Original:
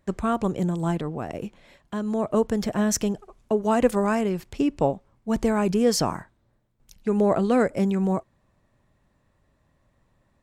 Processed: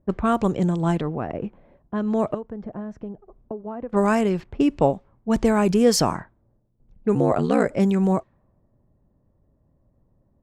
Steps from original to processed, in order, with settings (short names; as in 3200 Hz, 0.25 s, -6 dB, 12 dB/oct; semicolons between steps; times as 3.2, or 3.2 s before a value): 2.34–3.93 compressor 5:1, threshold -35 dBFS, peak gain reduction 19 dB; 7.14–7.67 ring modulator 76 Hz -> 25 Hz; low-pass opened by the level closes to 530 Hz, open at -19 dBFS; gain +3.5 dB